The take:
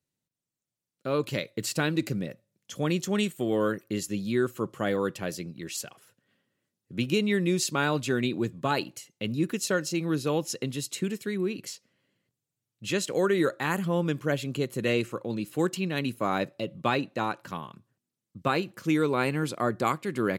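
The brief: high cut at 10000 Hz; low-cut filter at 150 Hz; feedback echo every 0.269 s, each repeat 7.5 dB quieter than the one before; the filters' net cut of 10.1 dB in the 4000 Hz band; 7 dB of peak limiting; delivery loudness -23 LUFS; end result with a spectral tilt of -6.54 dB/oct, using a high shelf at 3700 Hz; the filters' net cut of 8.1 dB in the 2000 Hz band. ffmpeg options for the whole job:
-af "highpass=150,lowpass=10k,equalizer=f=2k:t=o:g=-8,highshelf=f=3.7k:g=-8,equalizer=f=4k:t=o:g=-5,alimiter=limit=-21dB:level=0:latency=1,aecho=1:1:269|538|807|1076|1345:0.422|0.177|0.0744|0.0312|0.0131,volume=9dB"

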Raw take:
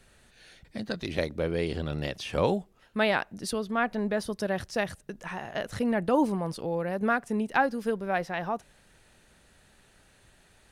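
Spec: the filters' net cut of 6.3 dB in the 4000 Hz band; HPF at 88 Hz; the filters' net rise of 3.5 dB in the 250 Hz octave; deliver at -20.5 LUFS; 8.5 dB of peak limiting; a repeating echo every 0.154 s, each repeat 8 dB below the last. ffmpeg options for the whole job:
-af "highpass=88,equalizer=f=250:t=o:g=4.5,equalizer=f=4k:t=o:g=-8.5,alimiter=limit=-19dB:level=0:latency=1,aecho=1:1:154|308|462|616|770:0.398|0.159|0.0637|0.0255|0.0102,volume=9.5dB"

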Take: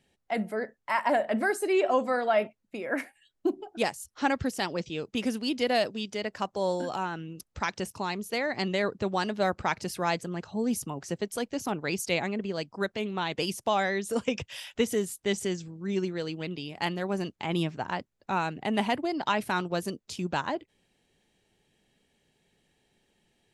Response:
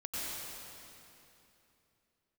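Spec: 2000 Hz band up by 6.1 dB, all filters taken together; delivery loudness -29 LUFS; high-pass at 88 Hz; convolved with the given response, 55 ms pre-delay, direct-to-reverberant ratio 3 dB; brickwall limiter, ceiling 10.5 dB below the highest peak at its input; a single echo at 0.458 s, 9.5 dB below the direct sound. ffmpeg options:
-filter_complex "[0:a]highpass=88,equalizer=f=2k:t=o:g=7.5,alimiter=limit=-18.5dB:level=0:latency=1,aecho=1:1:458:0.335,asplit=2[a][b];[1:a]atrim=start_sample=2205,adelay=55[c];[b][c]afir=irnorm=-1:irlink=0,volume=-6.5dB[d];[a][d]amix=inputs=2:normalize=0"

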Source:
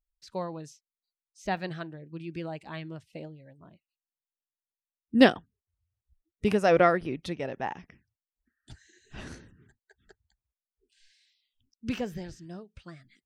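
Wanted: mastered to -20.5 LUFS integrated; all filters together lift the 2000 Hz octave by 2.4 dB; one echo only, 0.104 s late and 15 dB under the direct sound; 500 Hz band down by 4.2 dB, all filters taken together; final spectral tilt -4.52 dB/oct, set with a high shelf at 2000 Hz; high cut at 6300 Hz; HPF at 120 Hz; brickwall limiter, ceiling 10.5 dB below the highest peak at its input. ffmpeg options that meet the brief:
-af "highpass=120,lowpass=6.3k,equalizer=f=500:t=o:g=-5,highshelf=f=2k:g=-4,equalizer=f=2k:t=o:g=5.5,alimiter=limit=-16.5dB:level=0:latency=1,aecho=1:1:104:0.178,volume=14dB"

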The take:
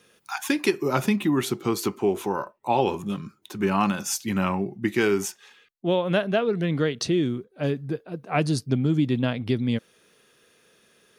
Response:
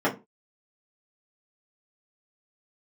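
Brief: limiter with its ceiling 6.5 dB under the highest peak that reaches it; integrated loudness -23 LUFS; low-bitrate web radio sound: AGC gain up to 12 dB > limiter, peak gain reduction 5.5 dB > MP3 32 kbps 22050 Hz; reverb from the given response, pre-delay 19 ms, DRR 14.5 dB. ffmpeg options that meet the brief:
-filter_complex "[0:a]alimiter=limit=-14dB:level=0:latency=1,asplit=2[a][b];[1:a]atrim=start_sample=2205,adelay=19[c];[b][c]afir=irnorm=-1:irlink=0,volume=-29dB[d];[a][d]amix=inputs=2:normalize=0,dynaudnorm=m=12dB,alimiter=limit=-17.5dB:level=0:latency=1,volume=6dB" -ar 22050 -c:a libmp3lame -b:a 32k

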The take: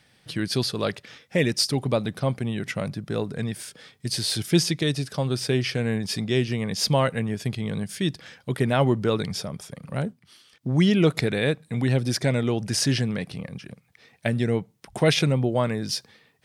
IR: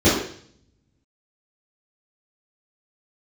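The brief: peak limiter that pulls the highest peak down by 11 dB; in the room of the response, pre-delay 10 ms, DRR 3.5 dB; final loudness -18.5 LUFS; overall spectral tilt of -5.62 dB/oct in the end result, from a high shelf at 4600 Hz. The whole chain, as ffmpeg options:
-filter_complex "[0:a]highshelf=f=4.6k:g=6.5,alimiter=limit=-16dB:level=0:latency=1,asplit=2[a][b];[1:a]atrim=start_sample=2205,adelay=10[c];[b][c]afir=irnorm=-1:irlink=0,volume=-26dB[d];[a][d]amix=inputs=2:normalize=0,volume=4.5dB"

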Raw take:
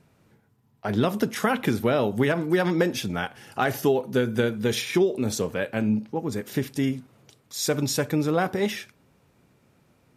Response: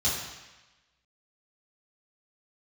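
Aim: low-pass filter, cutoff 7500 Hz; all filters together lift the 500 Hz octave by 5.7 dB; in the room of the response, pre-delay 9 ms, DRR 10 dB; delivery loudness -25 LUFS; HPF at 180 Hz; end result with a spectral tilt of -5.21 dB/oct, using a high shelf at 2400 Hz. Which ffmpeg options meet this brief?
-filter_complex "[0:a]highpass=180,lowpass=7.5k,equalizer=f=500:t=o:g=7.5,highshelf=f=2.4k:g=-5,asplit=2[a][b];[1:a]atrim=start_sample=2205,adelay=9[c];[b][c]afir=irnorm=-1:irlink=0,volume=-19.5dB[d];[a][d]amix=inputs=2:normalize=0,volume=-3dB"

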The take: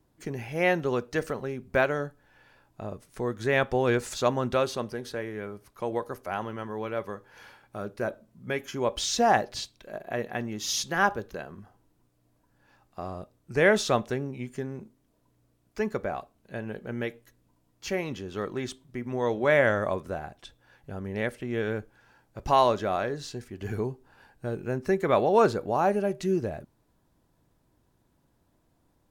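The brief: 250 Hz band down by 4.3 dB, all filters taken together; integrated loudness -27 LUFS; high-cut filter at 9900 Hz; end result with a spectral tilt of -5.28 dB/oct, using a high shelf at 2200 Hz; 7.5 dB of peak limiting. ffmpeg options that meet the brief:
-af "lowpass=9.9k,equalizer=f=250:t=o:g=-6,highshelf=f=2.2k:g=-6.5,volume=6dB,alimiter=limit=-12dB:level=0:latency=1"

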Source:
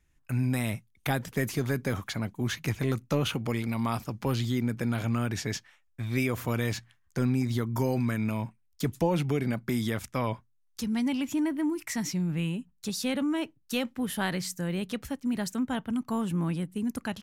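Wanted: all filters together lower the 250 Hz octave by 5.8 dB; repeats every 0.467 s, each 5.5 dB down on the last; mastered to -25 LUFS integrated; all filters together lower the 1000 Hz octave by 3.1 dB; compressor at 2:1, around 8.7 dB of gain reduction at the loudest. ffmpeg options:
-af "equalizer=f=250:t=o:g=-7,equalizer=f=1k:t=o:g=-3.5,acompressor=threshold=-42dB:ratio=2,aecho=1:1:467|934|1401|1868|2335|2802|3269:0.531|0.281|0.149|0.079|0.0419|0.0222|0.0118,volume=14.5dB"

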